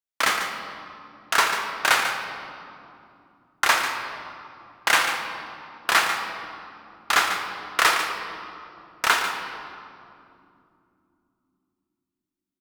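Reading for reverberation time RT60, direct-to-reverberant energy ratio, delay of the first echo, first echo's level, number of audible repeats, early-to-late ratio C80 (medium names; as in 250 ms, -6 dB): 2.9 s, 3.5 dB, 144 ms, -9.5 dB, 1, 5.0 dB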